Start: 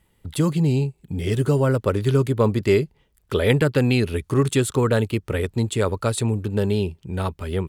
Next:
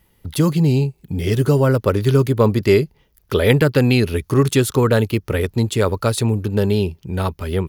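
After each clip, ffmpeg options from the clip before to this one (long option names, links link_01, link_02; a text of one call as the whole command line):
ffmpeg -i in.wav -af "aexciter=amount=1.5:drive=2.5:freq=4700,volume=4dB" out.wav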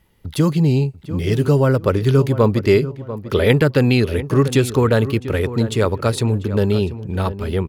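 ffmpeg -i in.wav -filter_complex "[0:a]highshelf=frequency=9100:gain=-8.5,asplit=2[link_01][link_02];[link_02]adelay=693,lowpass=frequency=1900:poles=1,volume=-13dB,asplit=2[link_03][link_04];[link_04]adelay=693,lowpass=frequency=1900:poles=1,volume=0.3,asplit=2[link_05][link_06];[link_06]adelay=693,lowpass=frequency=1900:poles=1,volume=0.3[link_07];[link_01][link_03][link_05][link_07]amix=inputs=4:normalize=0" out.wav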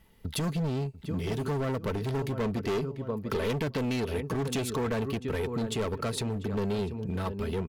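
ffmpeg -i in.wav -af "asoftclip=type=hard:threshold=-17dB,acompressor=threshold=-27dB:ratio=6,aecho=1:1:4.5:0.34,volume=-2dB" out.wav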